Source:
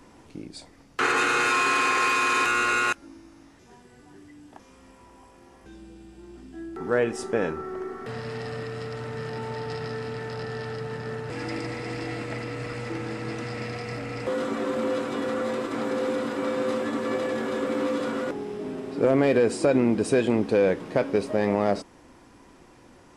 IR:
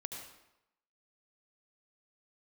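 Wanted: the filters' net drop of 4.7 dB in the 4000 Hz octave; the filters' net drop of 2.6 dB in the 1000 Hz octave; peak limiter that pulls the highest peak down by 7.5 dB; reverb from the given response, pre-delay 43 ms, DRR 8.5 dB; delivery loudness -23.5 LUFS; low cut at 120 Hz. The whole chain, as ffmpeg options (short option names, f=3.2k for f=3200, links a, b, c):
-filter_complex "[0:a]highpass=120,equalizer=f=1k:t=o:g=-3,equalizer=f=4k:t=o:g=-6,alimiter=limit=-18dB:level=0:latency=1,asplit=2[a][b];[1:a]atrim=start_sample=2205,adelay=43[c];[b][c]afir=irnorm=-1:irlink=0,volume=-7dB[d];[a][d]amix=inputs=2:normalize=0,volume=5dB"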